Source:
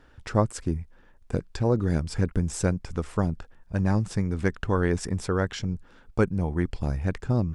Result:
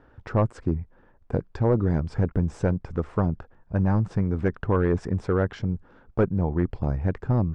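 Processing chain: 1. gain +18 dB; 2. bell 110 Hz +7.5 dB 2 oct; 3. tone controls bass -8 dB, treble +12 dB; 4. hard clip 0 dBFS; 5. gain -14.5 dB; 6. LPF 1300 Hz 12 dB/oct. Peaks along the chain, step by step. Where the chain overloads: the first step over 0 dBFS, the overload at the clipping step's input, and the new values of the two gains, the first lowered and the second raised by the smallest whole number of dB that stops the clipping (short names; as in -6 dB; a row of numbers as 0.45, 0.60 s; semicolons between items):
+9.5, +14.0, +9.0, 0.0, -14.5, -14.0 dBFS; step 1, 9.0 dB; step 1 +9 dB, step 5 -5.5 dB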